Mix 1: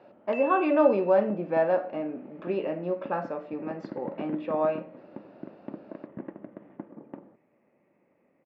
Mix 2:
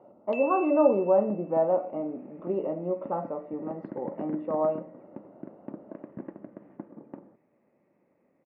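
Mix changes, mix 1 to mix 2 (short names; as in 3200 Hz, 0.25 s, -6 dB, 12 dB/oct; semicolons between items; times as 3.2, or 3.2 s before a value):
speech: add polynomial smoothing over 65 samples; second sound: add air absorption 420 m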